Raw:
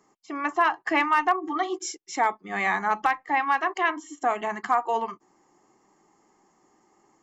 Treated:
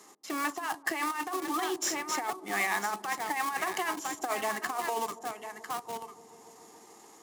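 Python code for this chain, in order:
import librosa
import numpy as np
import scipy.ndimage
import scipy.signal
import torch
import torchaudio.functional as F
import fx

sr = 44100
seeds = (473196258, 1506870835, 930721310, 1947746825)

p1 = fx.cvsd(x, sr, bps=64000)
p2 = p1 + 10.0 ** (-12.5 / 20.0) * np.pad(p1, (int(999 * sr / 1000.0), 0))[:len(p1)]
p3 = fx.schmitt(p2, sr, flips_db=-31.5)
p4 = p2 + (p3 * 10.0 ** (-11.5 / 20.0))
p5 = fx.over_compress(p4, sr, threshold_db=-24.0, ratio=-0.5)
p6 = scipy.signal.sosfilt(scipy.signal.butter(2, 240.0, 'highpass', fs=sr, output='sos'), p5)
p7 = fx.high_shelf(p6, sr, hz=3500.0, db=11.5)
p8 = p7 + fx.echo_wet_lowpass(p7, sr, ms=143, feedback_pct=77, hz=540.0, wet_db=-15.5, dry=0)
p9 = fx.band_squash(p8, sr, depth_pct=40)
y = p9 * 10.0 ** (-7.0 / 20.0)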